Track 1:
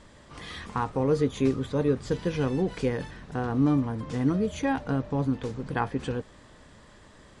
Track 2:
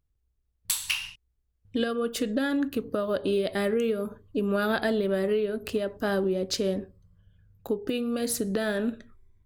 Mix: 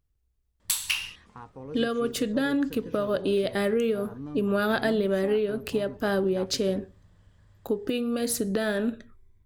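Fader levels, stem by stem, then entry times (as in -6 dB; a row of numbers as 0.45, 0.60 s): -16.0, +1.0 dB; 0.60, 0.00 s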